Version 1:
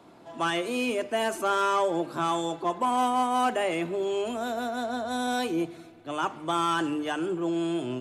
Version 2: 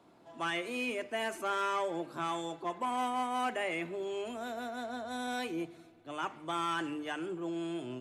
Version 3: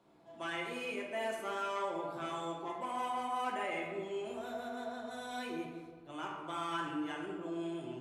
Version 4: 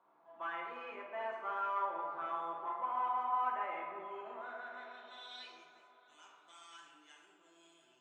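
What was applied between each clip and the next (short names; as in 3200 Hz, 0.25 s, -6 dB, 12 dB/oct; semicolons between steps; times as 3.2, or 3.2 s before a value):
dynamic EQ 2100 Hz, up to +8 dB, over -47 dBFS, Q 2; gain -9 dB
reverb RT60 1.5 s, pre-delay 5 ms, DRR -2 dB; gain -7.5 dB
band-pass sweep 1100 Hz -> 7200 Hz, 4.35–5.84; air absorption 100 m; on a send: dark delay 0.358 s, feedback 66%, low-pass 2400 Hz, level -14.5 dB; on the sum: gain +5 dB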